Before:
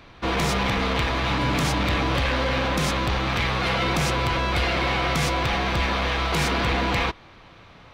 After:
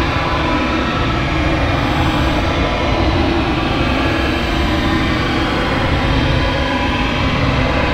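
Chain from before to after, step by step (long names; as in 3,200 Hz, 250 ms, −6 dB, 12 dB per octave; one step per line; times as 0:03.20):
comb and all-pass reverb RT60 2.4 s, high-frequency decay 0.6×, pre-delay 60 ms, DRR −8 dB
extreme stretch with random phases 23×, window 0.05 s, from 0:02.09
level −2 dB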